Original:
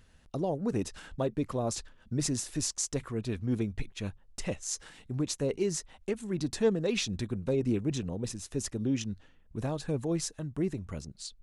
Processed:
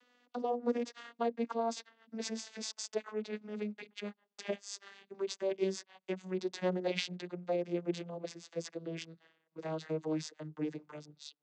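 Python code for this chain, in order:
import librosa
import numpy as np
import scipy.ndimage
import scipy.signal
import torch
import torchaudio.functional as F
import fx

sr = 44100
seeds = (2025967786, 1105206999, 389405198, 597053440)

y = fx.vocoder_glide(x, sr, note=59, semitones=-9)
y = fx.bandpass_edges(y, sr, low_hz=510.0, high_hz=4600.0)
y = fx.high_shelf(y, sr, hz=2900.0, db=9.0)
y = y * 10.0 ** (6.0 / 20.0)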